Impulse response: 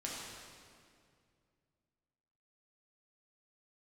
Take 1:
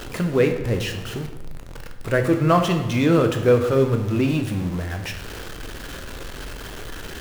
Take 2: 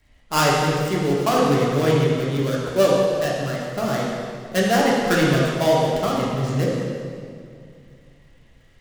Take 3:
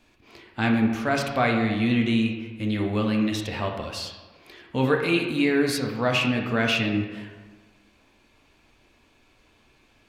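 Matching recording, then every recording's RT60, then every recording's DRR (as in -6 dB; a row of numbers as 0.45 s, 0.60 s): 2; 1.1 s, 2.2 s, 1.4 s; 4.5 dB, -5.0 dB, 1.0 dB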